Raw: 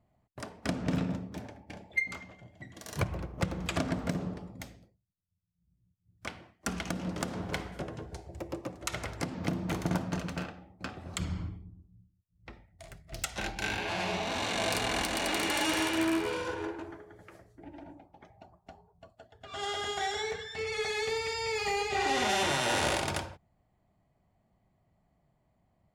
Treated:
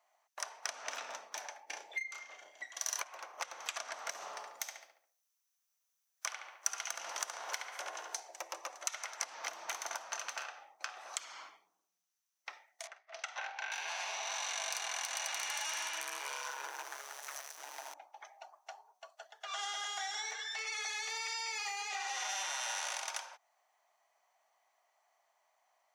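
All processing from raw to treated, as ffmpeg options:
-filter_complex "[0:a]asettb=1/sr,asplit=3[a][b][c];[a]atrim=end=1.664[d];[b]atrim=start=1.66:end=2.64,asetpts=PTS-STARTPTS,afade=t=in:d=0.004:c=qsin,afade=t=out:st=0.976:d=0.004:c=qsin,lowshelf=f=540:t=q:w=1.5:g=7,asplit=2[e][f];[f]adelay=34,volume=-5dB[g];[e][g]amix=inputs=2:normalize=0,atrim=end_sample=43218[h];[c]atrim=start=2.636[i];[d][h]acrossfade=d=0.004:c1=hsin:c2=qsin[j];[j][i]acrossfade=d=0.004:c1=qsin:c2=hsin,asettb=1/sr,asplit=3[k][l][m];[k]atrim=end=4.154[n];[l]atrim=start=4.15:end=8.2,asetpts=PTS-STARTPTS,afade=t=in:d=0.004:c=qsin,afade=t=out:st=4.046:d=0.004:c=qsin,highshelf=f=8.7k:g=8,asplit=2[o][p];[p]adelay=70,lowpass=f=3.1k:p=1,volume=-3dB,asplit=2[q][r];[r]adelay=70,lowpass=f=3.1k:p=1,volume=0.46,asplit=2[s][t];[t]adelay=70,lowpass=f=3.1k:p=1,volume=0.46,asplit=2[u][v];[v]adelay=70,lowpass=f=3.1k:p=1,volume=0.46,asplit=2[w][x];[x]adelay=70,lowpass=f=3.1k:p=1,volume=0.46,asplit=2[y][z];[z]adelay=70,lowpass=f=3.1k:p=1,volume=0.46[aa];[o][q][s][u][w][y][aa]amix=inputs=7:normalize=0,atrim=end_sample=178605[ab];[m]atrim=start=8.196[ac];[n][ab]acrossfade=d=0.004:c1=hsin:c2=qsin[ad];[ad][ac]acrossfade=d=0.004:c1=qsin:c2=hsin,asettb=1/sr,asplit=3[ae][af][ag];[ae]atrim=end=12.874[ah];[af]atrim=start=12.87:end=13.72,asetpts=PTS-STARTPTS,afade=t=in:d=0.004:c=qsin,afade=t=out:st=0.846:d=0.004:c=qsin,highpass=440,lowpass=3.7k,highshelf=f=2.3k:g=-11.5,asplit=2[ai][aj];[aj]adelay=46,volume=-13dB[ak];[ai][ak]amix=inputs=2:normalize=0,atrim=end_sample=37485[al];[ag]atrim=start=13.716[am];[ah][al]acrossfade=d=0.004:c1=hsin:c2=qsin[an];[an][am]acrossfade=d=0.004:c1=qsin:c2=hsin,asettb=1/sr,asplit=3[ao][ap][aq];[ao]atrim=end=16.004[ar];[ap]atrim=start=16:end=17.94,asetpts=PTS-STARTPTS,afade=t=in:d=0.004:c=qsin,afade=t=out:st=1.936:d=0.004:c=qsin,aeval=exprs='val(0)+0.5*0.00668*sgn(val(0))':c=same,equalizer=f=11k:t=o:w=0.99:g=5.5,tremolo=f=140:d=0.788[as];[aq]atrim=start=17.936[at];[ar][as]acrossfade=d=0.004:c1=hsin:c2=qsin[au];[au][at]acrossfade=d=0.004:c1=qsin:c2=hsin,highpass=f=780:w=0.5412,highpass=f=780:w=1.3066,acompressor=threshold=-45dB:ratio=6,equalizer=f=6k:w=6.6:g=14,volume=6.5dB"

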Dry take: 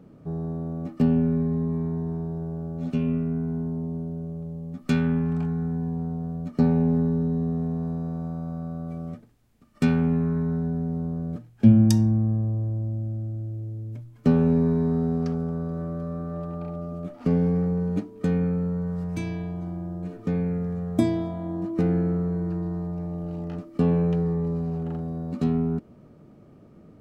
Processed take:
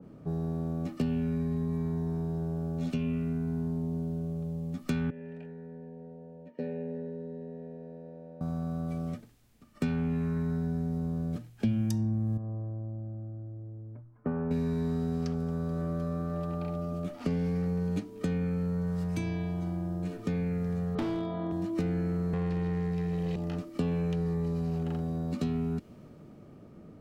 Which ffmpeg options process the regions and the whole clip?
-filter_complex "[0:a]asettb=1/sr,asplit=3[a][b][c];[a]atrim=end=5.104[d];[b]atrim=start=5.1:end=8.41,asetpts=PTS-STARTPTS,afade=t=in:d=0.004:c=qsin,afade=t=out:st=3.306:d=0.004:c=qsin,equalizer=f=160:t=o:w=3:g=6,aeval=exprs='val(0)+0.00794*sin(2*PI*930*n/s)':c=same,asplit=3[e][f][g];[e]bandpass=f=530:t=q:w=8,volume=0dB[h];[f]bandpass=f=1.84k:t=q:w=8,volume=-6dB[i];[g]bandpass=f=2.48k:t=q:w=8,volume=-9dB[j];[h][i][j]amix=inputs=3:normalize=0[k];[c]atrim=start=8.406[l];[d][k]acrossfade=d=0.004:c1=hsin:c2=qsin[m];[m][l]acrossfade=d=0.004:c1=qsin:c2=hsin,asettb=1/sr,asplit=3[n][o][p];[n]atrim=end=12.374[q];[o]atrim=start=12.37:end=14.51,asetpts=PTS-STARTPTS,afade=t=in:d=0.004:c=qsin,afade=t=out:st=2.136:d=0.004:c=qsin,lowpass=f=1.4k:w=0.5412,lowpass=f=1.4k:w=1.3066,lowshelf=f=490:g=-10[r];[p]atrim=start=14.506[s];[q][r]acrossfade=d=0.004:c1=hsin:c2=qsin[t];[t][s]acrossfade=d=0.004:c1=qsin:c2=hsin,asettb=1/sr,asplit=3[u][v][w];[u]atrim=end=20.954[x];[v]atrim=start=20.95:end=21.52,asetpts=PTS-STARTPTS,afade=t=in:d=0.004:c=qsin,afade=t=out:st=0.566:d=0.004:c=qsin,highpass=140,equalizer=f=430:t=q:w=4:g=7,equalizer=f=1.2k:t=q:w=4:g=7,equalizer=f=2.2k:t=q:w=4:g=-3,lowpass=f=4.1k:w=0.5412,lowpass=f=4.1k:w=1.3066,asoftclip=type=hard:threshold=-21.5dB[y];[w]atrim=start=21.516[z];[x][y]acrossfade=d=0.004:c1=hsin:c2=qsin[aa];[aa][z]acrossfade=d=0.004:c1=qsin:c2=hsin,asettb=1/sr,asplit=3[ab][ac][ad];[ab]atrim=end=22.334[ae];[ac]atrim=start=22.33:end=23.36,asetpts=PTS-STARTPTS,afade=t=in:d=0.004:c=qsin,afade=t=out:st=1.026:d=0.004:c=qsin,asuperstop=centerf=920:order=20:qfactor=0.83,aecho=1:1:1.6:0.73,atrim=end_sample=45423,asplit=2[af][ag];[ag]highpass=f=720:p=1,volume=25dB,asoftclip=type=tanh:threshold=-18.5dB[ah];[af][ah]amix=inputs=2:normalize=0,lowpass=f=1.5k:p=1,volume=-6dB[ai];[ad]atrim=start=23.356[aj];[ae][ai]acrossfade=d=0.004:c1=hsin:c2=qsin[ak];[ak][aj]acrossfade=d=0.004:c1=qsin:c2=hsin,acrossover=split=100|1700[al][am][an];[al]acompressor=threshold=-38dB:ratio=4[ao];[am]acompressor=threshold=-30dB:ratio=4[ap];[an]acompressor=threshold=-55dB:ratio=4[aq];[ao][ap][aq]amix=inputs=3:normalize=0,adynamicequalizer=threshold=0.00126:dfrequency=1900:dqfactor=0.7:tfrequency=1900:tqfactor=0.7:attack=5:release=100:ratio=0.375:range=4:mode=boostabove:tftype=highshelf"

